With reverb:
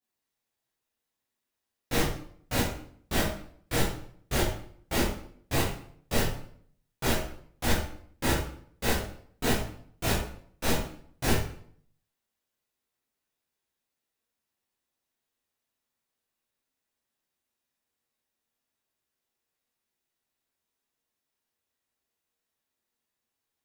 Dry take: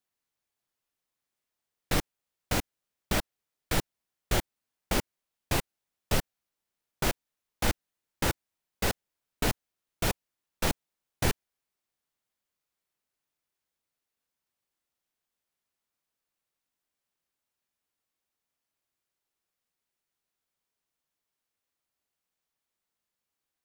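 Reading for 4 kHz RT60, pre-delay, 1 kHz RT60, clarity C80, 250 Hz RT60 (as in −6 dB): 0.45 s, 10 ms, 0.55 s, 7.5 dB, 0.70 s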